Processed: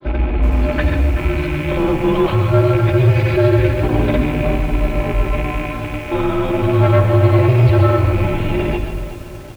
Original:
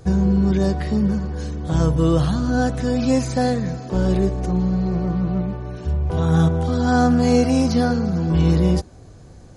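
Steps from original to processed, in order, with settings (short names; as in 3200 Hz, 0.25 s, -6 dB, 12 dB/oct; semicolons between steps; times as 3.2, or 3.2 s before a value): rattling part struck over -26 dBFS, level -28 dBFS; notches 60/120/180 Hz; comb 4.2 ms, depth 77%; in parallel at 0 dB: negative-ratio compressor -23 dBFS, ratio -1; on the sum: grains 0.1 s, grains 20/s, pitch spread up and down by 0 st; overloaded stage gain 10 dB; on a send at -7 dB: reverb RT60 0.35 s, pre-delay 0.119 s; on the sum: mistuned SSB -140 Hz 220–3500 Hz; lo-fi delay 0.377 s, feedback 55%, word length 6-bit, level -12 dB; gain +3 dB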